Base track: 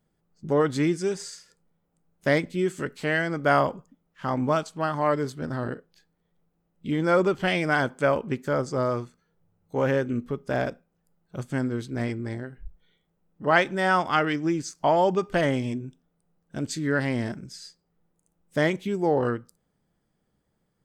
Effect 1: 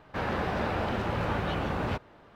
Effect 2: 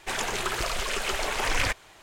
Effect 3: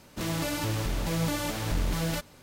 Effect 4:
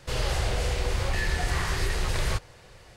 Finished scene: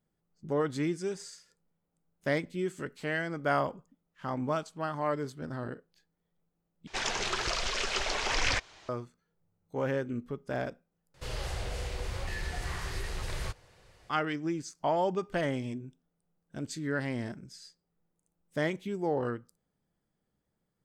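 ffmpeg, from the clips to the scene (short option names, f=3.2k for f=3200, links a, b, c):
-filter_complex "[0:a]volume=-7.5dB[a];[2:a]lowpass=f=5.5k:t=q:w=1.9[b];[a]asplit=3[c][d][e];[c]atrim=end=6.874[f];[b]atrim=end=2.02,asetpts=PTS-STARTPTS,volume=-4dB[g];[d]atrim=start=8.886:end=11.144[h];[4:a]atrim=end=2.96,asetpts=PTS-STARTPTS,volume=-9dB[i];[e]atrim=start=14.096[j];[f][g]acrossfade=d=0.004:c1=hsin:c2=hsin[k];[k][h]acrossfade=d=0.004:c1=hsin:c2=hsin[l];[l][i]acrossfade=d=0.004:c1=hsin:c2=hsin[m];[m][j]acrossfade=d=0.004:c1=hsin:c2=hsin"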